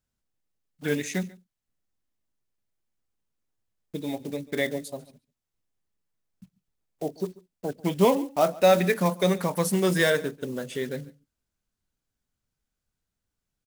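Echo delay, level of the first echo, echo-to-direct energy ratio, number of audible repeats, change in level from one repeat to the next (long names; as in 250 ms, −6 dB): 141 ms, −21.5 dB, −21.5 dB, 1, repeats not evenly spaced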